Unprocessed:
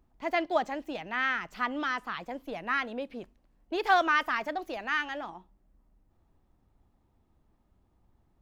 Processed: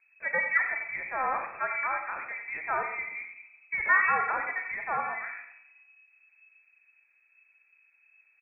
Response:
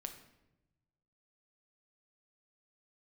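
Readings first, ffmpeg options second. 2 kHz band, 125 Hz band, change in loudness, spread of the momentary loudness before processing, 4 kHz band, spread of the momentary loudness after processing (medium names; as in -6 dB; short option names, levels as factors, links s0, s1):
+3.5 dB, no reading, +1.5 dB, 13 LU, under -40 dB, 13 LU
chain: -filter_complex "[0:a]asplit=2[s0][s1];[s1]adelay=90,highpass=300,lowpass=3400,asoftclip=type=hard:threshold=0.0794,volume=0.355[s2];[s0][s2]amix=inputs=2:normalize=0[s3];[1:a]atrim=start_sample=2205[s4];[s3][s4]afir=irnorm=-1:irlink=0,lowpass=f=2200:t=q:w=0.5098,lowpass=f=2200:t=q:w=0.6013,lowpass=f=2200:t=q:w=0.9,lowpass=f=2200:t=q:w=2.563,afreqshift=-2600,volume=1.5"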